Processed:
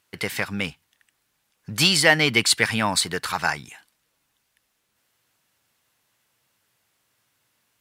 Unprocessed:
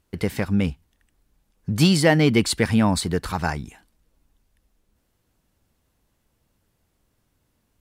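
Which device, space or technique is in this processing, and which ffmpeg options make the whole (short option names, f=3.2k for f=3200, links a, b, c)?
filter by subtraction: -filter_complex "[0:a]equalizer=f=120:t=o:w=0.83:g=10,asplit=2[a][b];[b]lowpass=2k,volume=-1[c];[a][c]amix=inputs=2:normalize=0,volume=5dB"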